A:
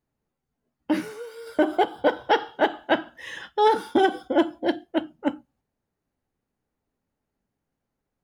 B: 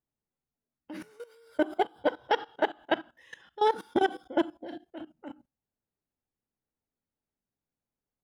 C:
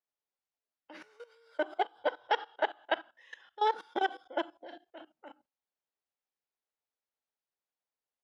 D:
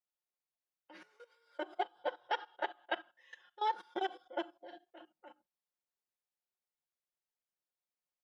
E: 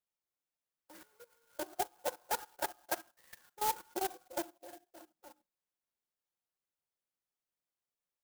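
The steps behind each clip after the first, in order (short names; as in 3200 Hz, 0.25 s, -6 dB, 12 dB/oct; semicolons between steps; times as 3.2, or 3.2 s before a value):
level quantiser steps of 18 dB; gain -3.5 dB
three-band isolator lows -21 dB, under 450 Hz, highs -22 dB, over 6600 Hz; gain -1.5 dB
comb 5.6 ms, depth 71%; gain -7 dB
clock jitter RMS 0.096 ms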